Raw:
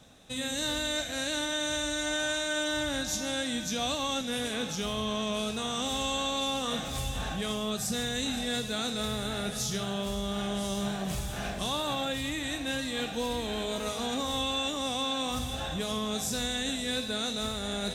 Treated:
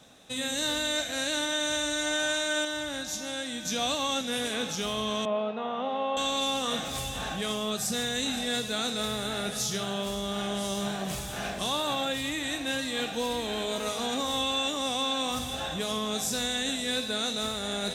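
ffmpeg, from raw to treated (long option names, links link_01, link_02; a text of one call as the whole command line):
ffmpeg -i in.wav -filter_complex "[0:a]asettb=1/sr,asplit=3[link_01][link_02][link_03];[link_01]atrim=end=5.254[link_04];[link_02]atrim=start=5.25:end=6.17,asetpts=PTS-STARTPTS,afade=type=in:duration=0.004:curve=qsin,afade=type=out:start_time=0.916:duration=0.004:curve=qsin,highpass=frequency=190:width=0.5412,highpass=frequency=190:width=1.3066,equalizer=frequency=320:width_type=q:width=4:gain=-8,equalizer=frequency=590:width_type=q:width=4:gain=7,equalizer=frequency=860:width_type=q:width=4:gain=4,equalizer=frequency=1600:width_type=q:width=4:gain=-6,equalizer=frequency=2300:width_type=q:width=4:gain=-6,lowpass=frequency=2400:width=0.5412,lowpass=frequency=2400:width=1.3066[link_05];[link_03]atrim=start=6.166[link_06];[link_04][link_05]acrossfade=duration=0.004:curve1=hsin:curve2=qsin[link_07];[link_07][link_06]acrossfade=duration=0.004:curve1=qsin:curve2=hsin,asplit=3[link_08][link_09][link_10];[link_08]atrim=end=2.652[link_11];[link_09]atrim=start=2.648:end=3.652,asetpts=PTS-STARTPTS,volume=-4.5dB[link_12];[link_10]atrim=start=3.648[link_13];[link_11][link_12]acrossfade=duration=0.004:curve1=hsin:curve2=hsin[link_14];[link_14][link_13]acrossfade=duration=0.004:curve1=hsin:curve2=hsin,lowshelf=frequency=120:gain=-12,volume=2.5dB" out.wav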